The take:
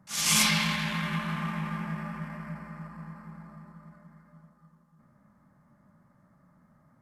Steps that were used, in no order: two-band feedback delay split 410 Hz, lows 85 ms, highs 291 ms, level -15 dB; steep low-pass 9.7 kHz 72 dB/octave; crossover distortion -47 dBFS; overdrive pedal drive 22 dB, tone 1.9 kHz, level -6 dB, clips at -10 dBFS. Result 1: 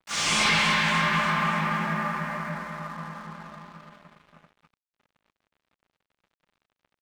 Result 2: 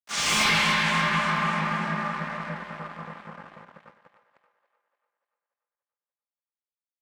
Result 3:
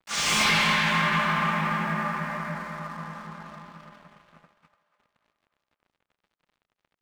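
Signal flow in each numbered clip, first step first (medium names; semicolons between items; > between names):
two-band feedback delay > overdrive pedal > steep low-pass > crossover distortion; steep low-pass > crossover distortion > two-band feedback delay > overdrive pedal; steep low-pass > overdrive pedal > crossover distortion > two-band feedback delay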